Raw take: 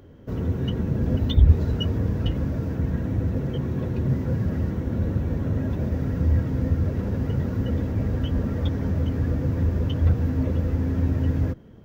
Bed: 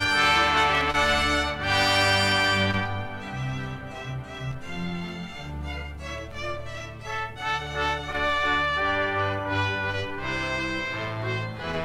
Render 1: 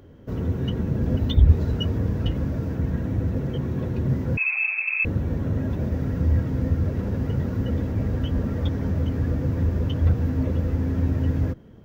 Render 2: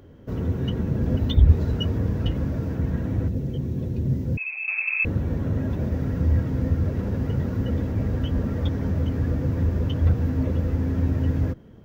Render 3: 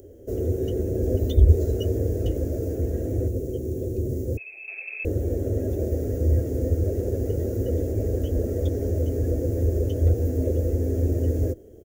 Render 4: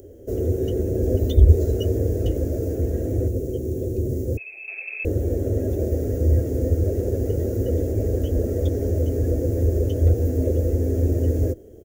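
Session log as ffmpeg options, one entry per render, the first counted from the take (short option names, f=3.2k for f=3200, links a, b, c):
-filter_complex "[0:a]asettb=1/sr,asplit=3[a][b][c];[a]atrim=end=4.374[d];[b]atrim=start=4.37:end=5.05,asetpts=PTS-STARTPTS,afade=t=in:d=0.004:c=qsin,afade=t=out:st=0.676:d=0.004:c=qsin,lowpass=f=2.3k:t=q:w=0.5098,lowpass=f=2.3k:t=q:w=0.6013,lowpass=f=2.3k:t=q:w=0.9,lowpass=f=2.3k:t=q:w=2.563,afreqshift=-2700[e];[c]atrim=start=5.046[f];[d][e]acrossfade=d=0.004:c1=hsin:c2=qsin[g];[g][f]acrossfade=d=0.004:c1=qsin:c2=hsin"
-filter_complex "[0:a]asettb=1/sr,asplit=3[a][b][c];[a]atrim=end=3.284[d];[b]atrim=start=3.28:end=4.68,asetpts=PTS-STARTPTS,afade=t=in:d=0.004:c=qsin,afade=t=out:st=1.396:d=0.004:c=qsin,equalizer=f=1.3k:w=0.63:g=-13.5[e];[c]atrim=start=4.676[f];[d][e]acrossfade=d=0.004:c1=hsin:c2=qsin[g];[g][f]acrossfade=d=0.004:c1=qsin:c2=hsin"
-af "firequalizer=gain_entry='entry(100,0);entry(150,-16);entry(370,10);entry(670,2);entry(970,-21);entry(1700,-11);entry(2700,-10);entry(4000,-8);entry(6900,13)':delay=0.05:min_phase=1"
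-af "volume=2.5dB"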